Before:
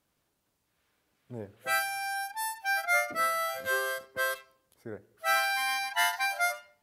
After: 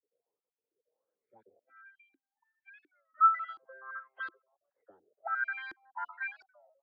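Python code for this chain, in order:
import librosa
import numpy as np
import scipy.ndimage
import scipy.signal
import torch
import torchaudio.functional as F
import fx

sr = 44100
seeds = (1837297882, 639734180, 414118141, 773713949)

y = fx.spec_dropout(x, sr, seeds[0], share_pct=31)
y = fx.dynamic_eq(y, sr, hz=690.0, q=1.2, threshold_db=-45.0, ratio=4.0, max_db=-6)
y = fx.auto_wah(y, sr, base_hz=470.0, top_hz=1400.0, q=9.7, full_db=-33.0, direction='up')
y = fx.dispersion(y, sr, late='lows', ms=40.0, hz=620.0)
y = fx.filter_lfo_lowpass(y, sr, shape='saw_up', hz=1.4, low_hz=330.0, high_hz=4100.0, q=6.1)
y = fx.vowel_filter(y, sr, vowel='i', at=(1.59, 3.15))
y = fx.record_warp(y, sr, rpm=33.33, depth_cents=160.0)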